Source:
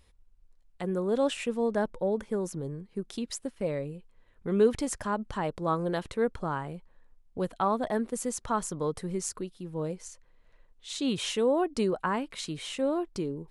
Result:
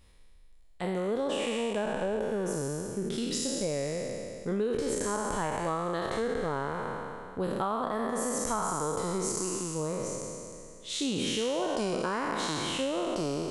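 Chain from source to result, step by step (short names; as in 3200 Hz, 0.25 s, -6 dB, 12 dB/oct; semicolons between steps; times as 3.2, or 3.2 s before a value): spectral trails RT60 2.40 s; compressor, threshold -27 dBFS, peak gain reduction 10.5 dB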